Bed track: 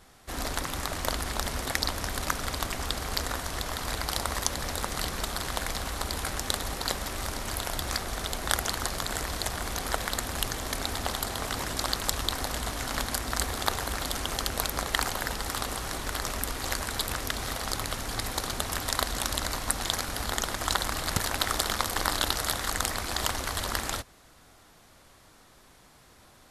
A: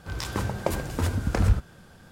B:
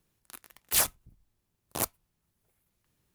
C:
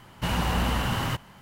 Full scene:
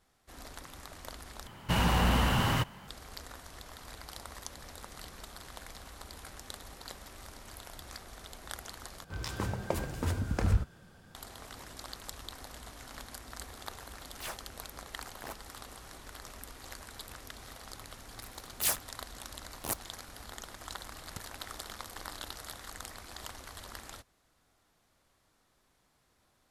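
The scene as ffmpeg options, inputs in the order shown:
-filter_complex "[2:a]asplit=2[a][b];[0:a]volume=-15.5dB[c];[3:a]asoftclip=type=tanh:threshold=-15.5dB[d];[a]asplit=2[e][f];[f]highpass=f=720:p=1,volume=13dB,asoftclip=type=tanh:threshold=-8dB[g];[e][g]amix=inputs=2:normalize=0,lowpass=f=1.6k:p=1,volume=-6dB[h];[c]asplit=3[i][j][k];[i]atrim=end=1.474[l];[d]atrim=end=1.41[m];[j]atrim=start=2.876:end=9.044[n];[1:a]atrim=end=2.11,asetpts=PTS-STARTPTS,volume=-6dB[o];[k]atrim=start=11.146[p];[h]atrim=end=3.14,asetpts=PTS-STARTPTS,volume=-12.5dB,afade=t=in:d=0.004:c=hsin,afade=t=out:st=3.136:d=0.004:c=hsin,adelay=594468S[q];[b]atrim=end=3.14,asetpts=PTS-STARTPTS,volume=-5dB,afade=t=in:d=0.004:c=hsin,afade=t=out:st=3.136:d=0.004:c=hsin,adelay=17890[r];[l][m]acrossfade=d=0.004:c1=hsin:c2=hsin[s];[s][n]acrossfade=d=0.004:c1=hsin:c2=hsin[t];[t][o]acrossfade=d=0.004:c1=hsin:c2=hsin[u];[u][p]acrossfade=d=0.004:c1=hsin:c2=hsin[v];[v][q][r]amix=inputs=3:normalize=0"

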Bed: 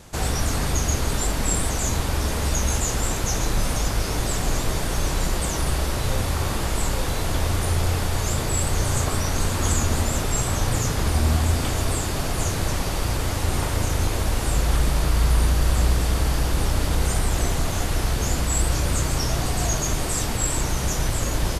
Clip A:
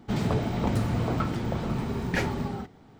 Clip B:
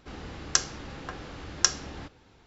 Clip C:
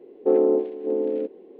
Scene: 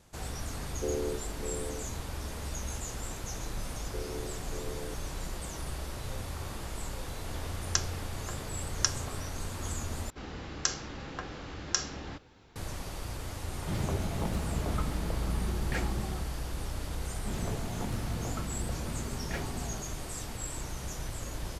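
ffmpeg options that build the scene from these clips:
-filter_complex "[3:a]asplit=2[a][b];[2:a]asplit=2[c][d];[1:a]asplit=2[e][f];[0:a]volume=-14.5dB[g];[b]acompressor=threshold=-21dB:ratio=6:attack=3.2:release=140:knee=1:detection=peak[h];[d]alimiter=level_in=8.5dB:limit=-1dB:release=50:level=0:latency=1[i];[e]afreqshift=-38[j];[g]asplit=2[k][l];[k]atrim=end=10.104[m];[i]atrim=end=2.46,asetpts=PTS-STARTPTS,volume=-9dB[n];[l]atrim=start=12.556[o];[a]atrim=end=1.59,asetpts=PTS-STARTPTS,volume=-15dB,afade=t=in:d=0.004:c=hsin,afade=t=out:st=1.586:d=0.004:c=hsin,adelay=560[p];[h]atrim=end=1.59,asetpts=PTS-STARTPTS,volume=-16.5dB,afade=t=in:d=0.004:c=hsin,afade=t=out:st=1.586:d=0.004:c=hsin,adelay=3680[q];[c]atrim=end=2.46,asetpts=PTS-STARTPTS,volume=-5.5dB,afade=t=in:d=0.004:c=hsin,afade=t=out:st=2.456:d=0.004:c=hsin,adelay=7200[r];[j]atrim=end=2.99,asetpts=PTS-STARTPTS,volume=-7dB,afade=t=in:d=0.004:c=hsin,afade=t=out:st=2.986:d=0.004:c=hsin,adelay=13580[s];[f]atrim=end=2.99,asetpts=PTS-STARTPTS,volume=-11dB,afade=t=in:d=0.004:c=hsin,afade=t=out:st=2.986:d=0.004:c=hsin,adelay=17170[t];[m][n]acrossfade=d=0.004:c1=hsin:c2=hsin[u];[u][o]acrossfade=d=0.004:c1=hsin:c2=hsin[v];[v][p][q][r][s][t]amix=inputs=6:normalize=0"

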